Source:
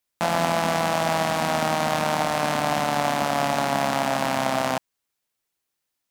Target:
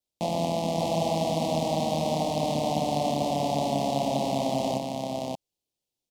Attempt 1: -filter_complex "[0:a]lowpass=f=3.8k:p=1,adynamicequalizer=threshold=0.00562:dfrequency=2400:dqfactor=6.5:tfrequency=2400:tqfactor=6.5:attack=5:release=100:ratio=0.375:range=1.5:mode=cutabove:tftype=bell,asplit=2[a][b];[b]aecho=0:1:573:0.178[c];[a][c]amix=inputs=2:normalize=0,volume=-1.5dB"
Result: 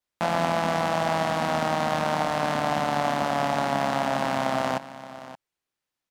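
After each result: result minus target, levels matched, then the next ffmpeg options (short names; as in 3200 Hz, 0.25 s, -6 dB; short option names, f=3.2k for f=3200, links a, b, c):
2000 Hz band +12.0 dB; echo-to-direct -12 dB
-filter_complex "[0:a]lowpass=f=3.8k:p=1,adynamicequalizer=threshold=0.00562:dfrequency=2400:dqfactor=6.5:tfrequency=2400:tqfactor=6.5:attack=5:release=100:ratio=0.375:range=1.5:mode=cutabove:tftype=bell,asuperstop=centerf=1500:order=4:qfactor=0.63,asplit=2[a][b];[b]aecho=0:1:573:0.178[c];[a][c]amix=inputs=2:normalize=0,volume=-1.5dB"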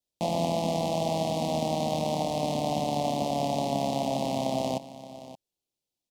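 echo-to-direct -12 dB
-filter_complex "[0:a]lowpass=f=3.8k:p=1,adynamicequalizer=threshold=0.00562:dfrequency=2400:dqfactor=6.5:tfrequency=2400:tqfactor=6.5:attack=5:release=100:ratio=0.375:range=1.5:mode=cutabove:tftype=bell,asuperstop=centerf=1500:order=4:qfactor=0.63,asplit=2[a][b];[b]aecho=0:1:573:0.708[c];[a][c]amix=inputs=2:normalize=0,volume=-1.5dB"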